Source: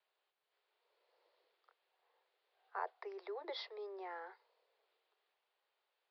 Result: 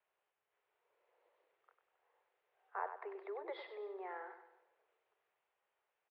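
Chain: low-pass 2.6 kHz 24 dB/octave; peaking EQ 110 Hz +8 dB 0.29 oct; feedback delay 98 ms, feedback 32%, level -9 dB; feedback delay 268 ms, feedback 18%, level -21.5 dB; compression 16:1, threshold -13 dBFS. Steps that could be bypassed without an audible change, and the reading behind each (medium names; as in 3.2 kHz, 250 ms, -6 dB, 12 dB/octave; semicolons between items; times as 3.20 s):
peaking EQ 110 Hz: input has nothing below 290 Hz; compression, threshold -13 dBFS: peak at its input -27.5 dBFS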